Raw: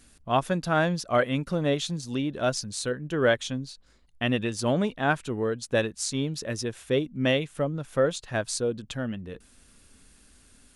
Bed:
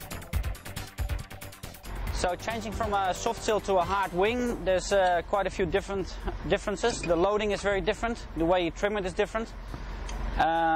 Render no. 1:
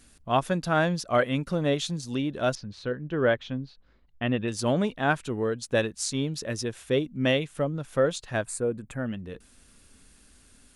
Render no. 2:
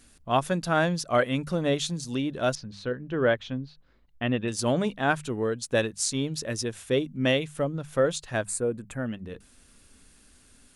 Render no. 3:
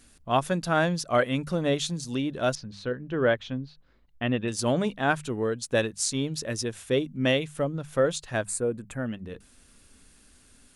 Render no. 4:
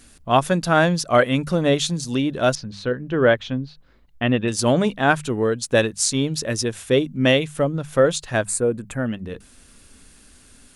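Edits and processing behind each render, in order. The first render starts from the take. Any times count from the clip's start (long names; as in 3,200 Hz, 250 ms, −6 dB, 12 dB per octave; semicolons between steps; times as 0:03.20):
0:02.55–0:04.48: high-frequency loss of the air 300 metres; 0:08.45–0:09.06: flat-topped bell 4,300 Hz −16 dB 1.3 octaves
mains-hum notches 50/100/150/200 Hz; dynamic equaliser 9,100 Hz, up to +4 dB, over −52 dBFS, Q 0.71
no processing that can be heard
level +7 dB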